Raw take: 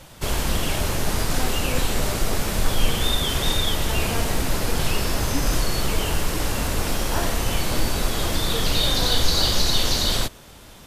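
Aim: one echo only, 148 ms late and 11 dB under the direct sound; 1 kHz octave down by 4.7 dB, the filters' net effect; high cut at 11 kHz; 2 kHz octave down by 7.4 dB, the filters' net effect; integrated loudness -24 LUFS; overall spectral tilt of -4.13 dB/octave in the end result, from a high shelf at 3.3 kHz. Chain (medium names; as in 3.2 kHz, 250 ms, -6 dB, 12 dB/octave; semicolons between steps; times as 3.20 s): low-pass 11 kHz; peaking EQ 1 kHz -4 dB; peaking EQ 2 kHz -7.5 dB; treble shelf 3.3 kHz -3.5 dB; delay 148 ms -11 dB; trim +1.5 dB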